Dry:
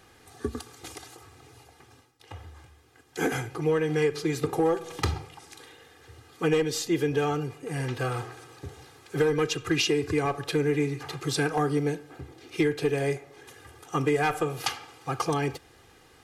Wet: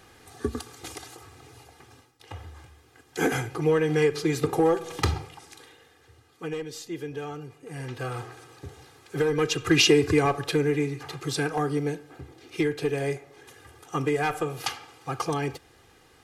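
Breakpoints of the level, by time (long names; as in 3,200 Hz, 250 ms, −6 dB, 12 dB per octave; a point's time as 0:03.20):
0:05.21 +2.5 dB
0:06.45 −9 dB
0:07.39 −9 dB
0:08.33 −1 dB
0:09.24 −1 dB
0:09.88 +7 dB
0:10.93 −1 dB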